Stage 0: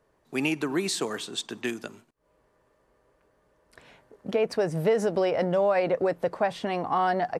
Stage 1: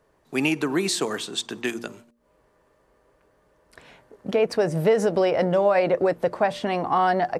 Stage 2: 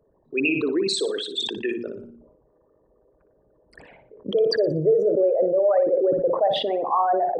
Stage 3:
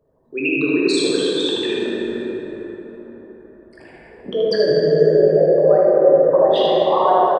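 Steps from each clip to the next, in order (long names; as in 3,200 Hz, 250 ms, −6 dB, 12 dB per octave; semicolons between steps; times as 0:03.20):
hum removal 117.9 Hz, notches 5; level +4 dB
spectral envelope exaggerated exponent 3; flutter between parallel walls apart 10.1 metres, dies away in 0.34 s; level that may fall only so fast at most 58 dB per second
single-tap delay 77 ms −5 dB; dense smooth reverb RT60 4.8 s, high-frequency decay 0.4×, DRR −5 dB; level −1 dB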